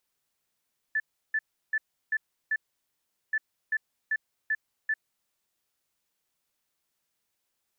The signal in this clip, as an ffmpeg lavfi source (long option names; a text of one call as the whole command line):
ffmpeg -f lavfi -i "aevalsrc='0.0668*sin(2*PI*1750*t)*clip(min(mod(mod(t,2.38),0.39),0.05-mod(mod(t,2.38),0.39))/0.005,0,1)*lt(mod(t,2.38),1.95)':duration=4.76:sample_rate=44100" out.wav